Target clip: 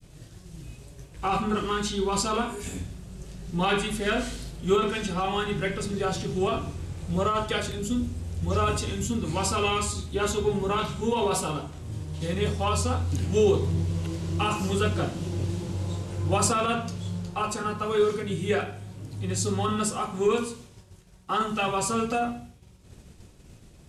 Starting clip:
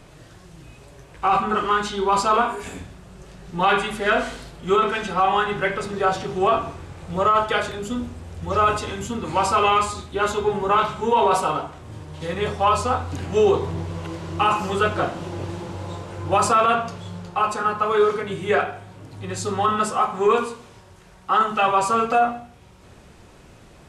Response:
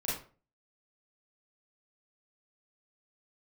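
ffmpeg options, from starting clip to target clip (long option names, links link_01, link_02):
-af "equalizer=frequency=1100:width=0.38:gain=-13,agate=range=-33dB:threshold=-45dB:ratio=3:detection=peak,adynamicequalizer=threshold=0.00708:dfrequency=820:dqfactor=0.7:tfrequency=820:tqfactor=0.7:attack=5:release=100:ratio=0.375:range=2:mode=cutabove:tftype=bell,volume=4.5dB"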